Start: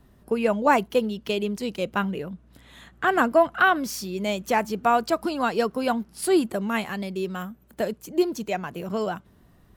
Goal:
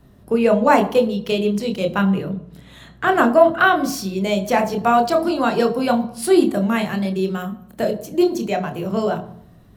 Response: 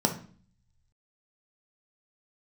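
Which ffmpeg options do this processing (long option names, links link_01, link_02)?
-filter_complex "[0:a]asplit=2[link_01][link_02];[1:a]atrim=start_sample=2205,asetrate=31311,aresample=44100,adelay=26[link_03];[link_02][link_03]afir=irnorm=-1:irlink=0,volume=-16dB[link_04];[link_01][link_04]amix=inputs=2:normalize=0,volume=3dB"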